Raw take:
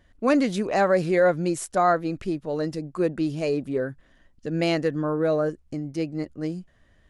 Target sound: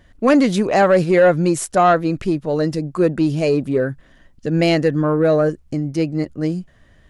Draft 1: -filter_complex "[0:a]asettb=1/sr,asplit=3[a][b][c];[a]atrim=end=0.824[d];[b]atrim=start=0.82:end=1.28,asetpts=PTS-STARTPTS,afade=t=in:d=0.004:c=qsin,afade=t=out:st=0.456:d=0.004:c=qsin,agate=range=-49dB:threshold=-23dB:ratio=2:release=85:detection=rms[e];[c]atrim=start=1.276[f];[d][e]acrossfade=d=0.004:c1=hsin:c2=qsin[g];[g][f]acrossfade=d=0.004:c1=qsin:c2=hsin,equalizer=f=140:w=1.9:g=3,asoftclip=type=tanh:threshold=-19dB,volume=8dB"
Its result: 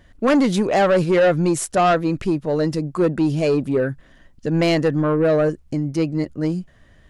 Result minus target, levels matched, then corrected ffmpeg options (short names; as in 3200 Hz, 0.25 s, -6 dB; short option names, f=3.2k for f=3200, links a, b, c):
soft clip: distortion +9 dB
-filter_complex "[0:a]asettb=1/sr,asplit=3[a][b][c];[a]atrim=end=0.824[d];[b]atrim=start=0.82:end=1.28,asetpts=PTS-STARTPTS,afade=t=in:d=0.004:c=qsin,afade=t=out:st=0.456:d=0.004:c=qsin,agate=range=-49dB:threshold=-23dB:ratio=2:release=85:detection=rms[e];[c]atrim=start=1.276[f];[d][e]acrossfade=d=0.004:c1=hsin:c2=qsin[g];[g][f]acrossfade=d=0.004:c1=qsin:c2=hsin,equalizer=f=140:w=1.9:g=3,asoftclip=type=tanh:threshold=-12dB,volume=8dB"